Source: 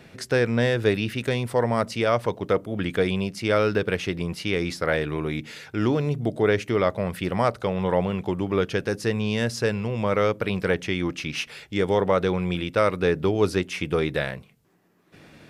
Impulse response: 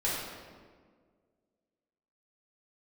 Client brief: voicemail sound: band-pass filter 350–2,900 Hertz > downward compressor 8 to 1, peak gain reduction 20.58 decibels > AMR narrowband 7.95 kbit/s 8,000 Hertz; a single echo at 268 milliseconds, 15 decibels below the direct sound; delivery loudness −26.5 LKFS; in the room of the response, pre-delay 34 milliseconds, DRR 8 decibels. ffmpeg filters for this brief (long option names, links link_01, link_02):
-filter_complex "[0:a]aecho=1:1:268:0.178,asplit=2[link_01][link_02];[1:a]atrim=start_sample=2205,adelay=34[link_03];[link_02][link_03]afir=irnorm=-1:irlink=0,volume=-16.5dB[link_04];[link_01][link_04]amix=inputs=2:normalize=0,highpass=350,lowpass=2900,acompressor=threshold=-37dB:ratio=8,volume=15dB" -ar 8000 -c:a libopencore_amrnb -b:a 7950